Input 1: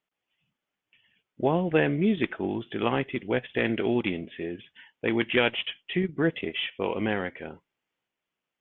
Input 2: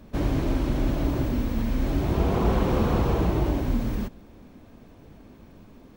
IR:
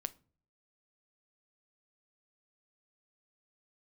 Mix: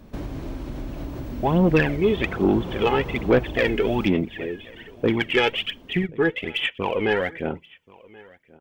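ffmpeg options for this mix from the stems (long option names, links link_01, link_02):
-filter_complex "[0:a]dynaudnorm=framelen=710:gausssize=3:maxgain=11.5dB,aphaser=in_gain=1:out_gain=1:delay=2.4:decay=0.66:speed=1.2:type=sinusoidal,volume=-5.5dB,asplit=3[link_01][link_02][link_03];[link_02]volume=-16.5dB[link_04];[link_03]volume=-24dB[link_05];[1:a]acompressor=threshold=-31dB:ratio=4,volume=1dB[link_06];[2:a]atrim=start_sample=2205[link_07];[link_04][link_07]afir=irnorm=-1:irlink=0[link_08];[link_05]aecho=0:1:1080:1[link_09];[link_01][link_06][link_08][link_09]amix=inputs=4:normalize=0,asoftclip=type=tanh:threshold=-9dB"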